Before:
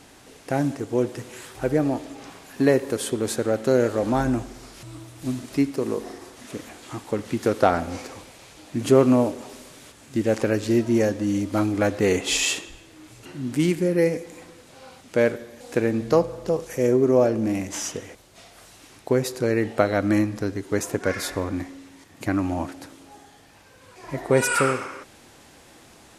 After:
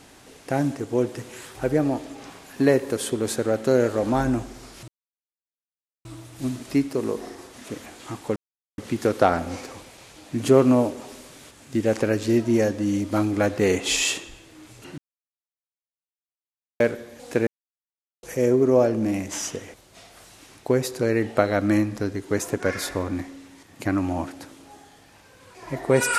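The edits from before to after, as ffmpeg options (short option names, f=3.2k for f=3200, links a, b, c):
-filter_complex "[0:a]asplit=7[a][b][c][d][e][f][g];[a]atrim=end=4.88,asetpts=PTS-STARTPTS,afade=t=out:st=4.876:d=0.004:c=hsin,apad=pad_dur=1.17[h];[b]atrim=start=4.88:end=7.19,asetpts=PTS-STARTPTS,afade=t=in:d=0.004:c=hsin,afade=t=out:st=2.306:d=0.004:c=hsin,apad=pad_dur=0.42[i];[c]atrim=start=7.19:end=13.39,asetpts=PTS-STARTPTS,afade=t=in:d=0.004:c=hsin,afade=t=out:st=6.196:d=0.004:c=hsin[j];[d]atrim=start=13.39:end=15.21,asetpts=PTS-STARTPTS,volume=0[k];[e]atrim=start=15.21:end=15.88,asetpts=PTS-STARTPTS,afade=t=in:d=0.004:c=hsin,afade=t=out:st=0.666:d=0.004:c=hsin[l];[f]atrim=start=15.88:end=16.64,asetpts=PTS-STARTPTS,volume=0[m];[g]atrim=start=16.64,asetpts=PTS-STARTPTS,afade=t=in:d=0.004:c=hsin[n];[h][i][j][k][l][m][n]concat=n=7:v=0:a=1"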